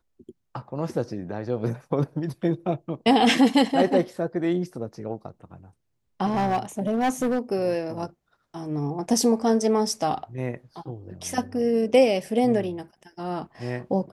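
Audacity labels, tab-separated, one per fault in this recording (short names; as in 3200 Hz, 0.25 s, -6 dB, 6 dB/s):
6.250000	7.390000	clipped -19 dBFS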